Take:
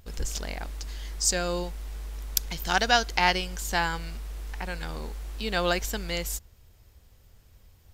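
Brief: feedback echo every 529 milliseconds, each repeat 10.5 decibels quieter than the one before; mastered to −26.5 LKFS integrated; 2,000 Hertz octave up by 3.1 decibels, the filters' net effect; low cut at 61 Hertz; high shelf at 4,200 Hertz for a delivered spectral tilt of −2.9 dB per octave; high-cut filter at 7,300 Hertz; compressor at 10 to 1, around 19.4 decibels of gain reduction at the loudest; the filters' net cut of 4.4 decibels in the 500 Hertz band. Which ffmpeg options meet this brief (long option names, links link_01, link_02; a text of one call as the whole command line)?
ffmpeg -i in.wav -af "highpass=61,lowpass=7300,equalizer=frequency=500:width_type=o:gain=-6,equalizer=frequency=2000:width_type=o:gain=5.5,highshelf=frequency=4200:gain=-6,acompressor=threshold=-36dB:ratio=10,aecho=1:1:529|1058|1587:0.299|0.0896|0.0269,volume=14.5dB" out.wav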